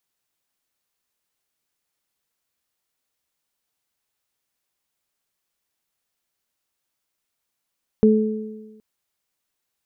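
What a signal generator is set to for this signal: additive tone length 0.77 s, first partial 216 Hz, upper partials -2 dB, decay 1.25 s, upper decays 1.21 s, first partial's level -11 dB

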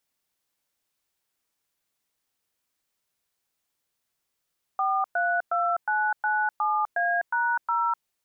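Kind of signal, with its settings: DTMF "432997A#0", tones 0.252 s, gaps 0.11 s, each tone -24.5 dBFS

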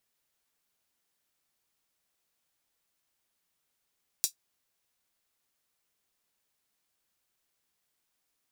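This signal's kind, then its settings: closed hi-hat, high-pass 5200 Hz, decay 0.11 s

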